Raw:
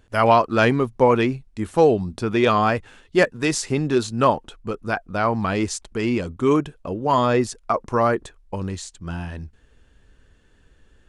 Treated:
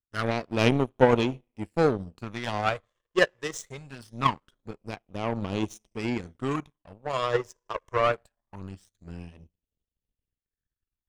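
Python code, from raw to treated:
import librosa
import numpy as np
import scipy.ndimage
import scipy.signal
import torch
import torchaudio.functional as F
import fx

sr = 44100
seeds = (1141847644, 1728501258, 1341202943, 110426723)

p1 = 10.0 ** (-16.0 / 20.0) * np.tanh(x / 10.0 ** (-16.0 / 20.0))
p2 = x + (p1 * 10.0 ** (-6.0 / 20.0))
p3 = fx.rev_double_slope(p2, sr, seeds[0], early_s=0.64, late_s=2.6, knee_db=-15, drr_db=17.5)
p4 = fx.phaser_stages(p3, sr, stages=12, low_hz=230.0, high_hz=1700.0, hz=0.23, feedback_pct=20)
p5 = fx.power_curve(p4, sr, exponent=2.0)
y = p5 * 10.0 ** (1.0 / 20.0)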